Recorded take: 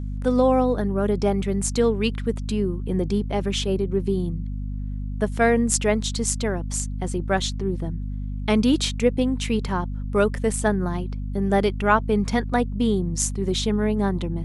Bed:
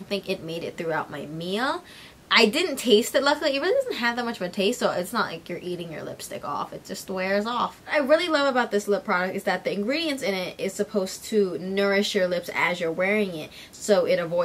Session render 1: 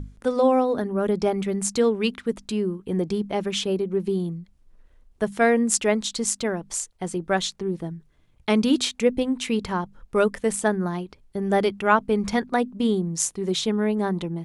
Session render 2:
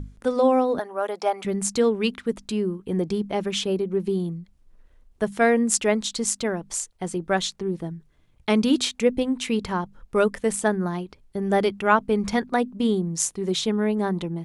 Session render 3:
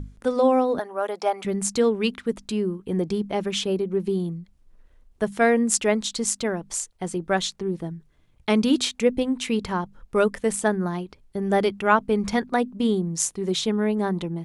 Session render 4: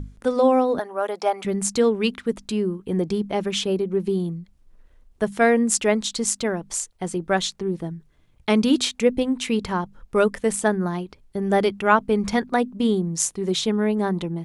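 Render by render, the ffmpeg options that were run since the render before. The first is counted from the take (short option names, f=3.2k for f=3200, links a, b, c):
-af "bandreject=f=50:t=h:w=6,bandreject=f=100:t=h:w=6,bandreject=f=150:t=h:w=6,bandreject=f=200:t=h:w=6,bandreject=f=250:t=h:w=6"
-filter_complex "[0:a]asettb=1/sr,asplit=3[a][b][c];[a]atrim=end=0.794[d];[b]atrim=start=0.79:end=1.45,asetpts=PTS-STARTPTS,afade=t=in:d=0.004:c=qsin,afade=t=out:st=0.656:d=0.004:c=qsin,highpass=f=730:t=q:w=1.8[e];[c]atrim=start=1.446[f];[d][e]acrossfade=d=0.004:c1=hsin:c2=qsin[g];[g][f]acrossfade=d=0.004:c1=qsin:c2=hsin"
-af anull
-af "volume=1.5dB,alimiter=limit=-3dB:level=0:latency=1"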